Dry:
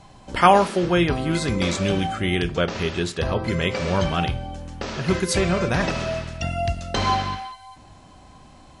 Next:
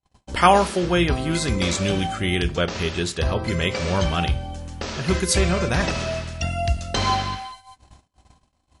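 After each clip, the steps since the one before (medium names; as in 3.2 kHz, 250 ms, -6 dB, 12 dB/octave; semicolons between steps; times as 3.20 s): peaking EQ 66 Hz +11.5 dB 0.42 oct; gate -42 dBFS, range -42 dB; treble shelf 3.8 kHz +7 dB; trim -1 dB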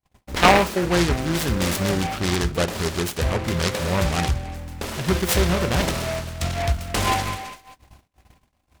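delay time shaken by noise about 1.3 kHz, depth 0.11 ms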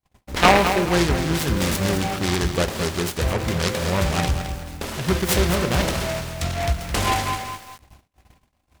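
bit-crushed delay 214 ms, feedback 35%, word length 6-bit, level -8 dB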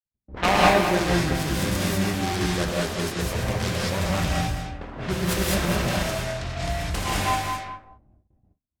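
gated-style reverb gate 230 ms rising, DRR -4.5 dB; gate with hold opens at -40 dBFS; level-controlled noise filter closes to 350 Hz, open at -15 dBFS; trim -8 dB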